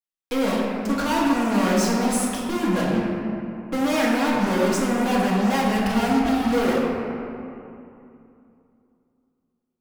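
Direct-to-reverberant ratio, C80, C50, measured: -5.5 dB, 0.5 dB, -1.0 dB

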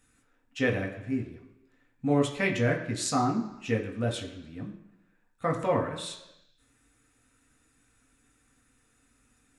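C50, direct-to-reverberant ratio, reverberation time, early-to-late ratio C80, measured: 9.0 dB, -0.5 dB, 1.0 s, 11.0 dB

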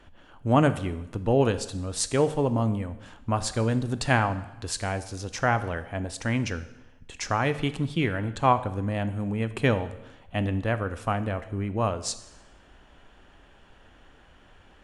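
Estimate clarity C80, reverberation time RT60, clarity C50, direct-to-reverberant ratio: 16.0 dB, 1.0 s, 14.0 dB, 11.5 dB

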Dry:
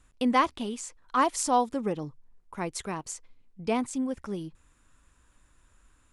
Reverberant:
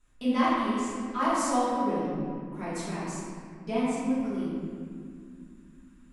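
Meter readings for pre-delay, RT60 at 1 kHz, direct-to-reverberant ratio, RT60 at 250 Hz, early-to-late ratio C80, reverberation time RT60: 3 ms, 1.9 s, -12.5 dB, 4.0 s, -1.5 dB, 2.2 s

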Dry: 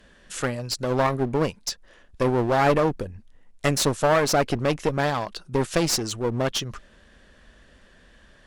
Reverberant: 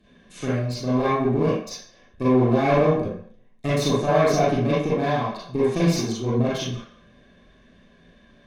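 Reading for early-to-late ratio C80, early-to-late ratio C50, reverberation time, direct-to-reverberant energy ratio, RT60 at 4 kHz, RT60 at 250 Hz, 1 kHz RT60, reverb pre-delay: 4.5 dB, -1.5 dB, 0.60 s, -9.0 dB, 0.60 s, 0.35 s, 0.65 s, 37 ms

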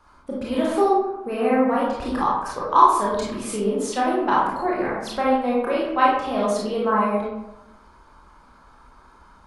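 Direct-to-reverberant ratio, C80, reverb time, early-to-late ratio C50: -6.5 dB, 4.5 dB, 0.95 s, -0.5 dB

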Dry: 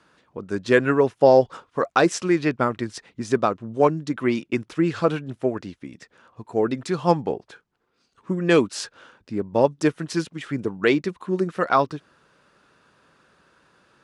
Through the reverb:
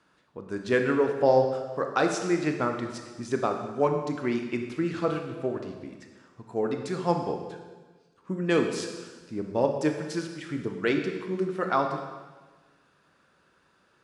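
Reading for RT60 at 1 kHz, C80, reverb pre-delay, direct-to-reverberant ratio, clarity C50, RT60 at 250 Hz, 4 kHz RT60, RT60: 1.3 s, 7.5 dB, 20 ms, 4.0 dB, 6.0 dB, 1.5 s, 1.3 s, 1.3 s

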